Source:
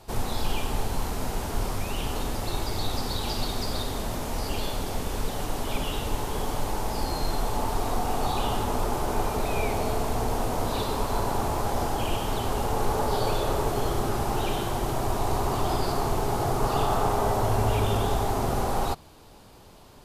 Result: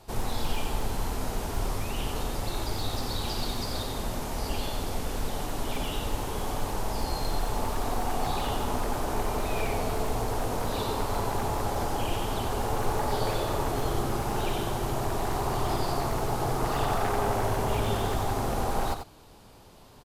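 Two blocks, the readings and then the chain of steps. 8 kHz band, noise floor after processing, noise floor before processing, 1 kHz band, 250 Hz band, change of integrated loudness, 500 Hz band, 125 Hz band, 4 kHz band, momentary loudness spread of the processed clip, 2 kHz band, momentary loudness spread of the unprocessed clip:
-2.0 dB, -51 dBFS, -50 dBFS, -2.5 dB, -2.0 dB, -2.0 dB, -2.5 dB, -2.5 dB, -2.0 dB, 5 LU, -1.0 dB, 6 LU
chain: one-sided wavefolder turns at -20.5 dBFS; delay 90 ms -7.5 dB; trim -2.5 dB

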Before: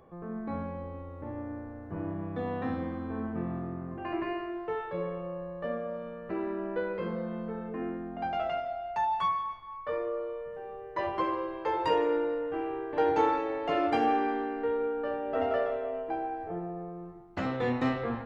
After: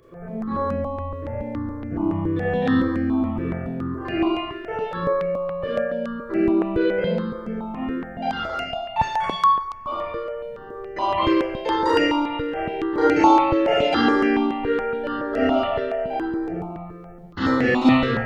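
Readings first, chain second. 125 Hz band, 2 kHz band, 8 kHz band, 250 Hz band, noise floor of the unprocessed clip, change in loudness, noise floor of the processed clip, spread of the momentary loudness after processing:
+10.0 dB, +12.0 dB, no reading, +13.0 dB, -43 dBFS, +10.0 dB, -38 dBFS, 12 LU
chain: dynamic bell 3.7 kHz, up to +7 dB, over -53 dBFS, Q 0.94; Schroeder reverb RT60 0.66 s, combs from 27 ms, DRR -7 dB; stepped phaser 7.1 Hz 210–3600 Hz; trim +5.5 dB

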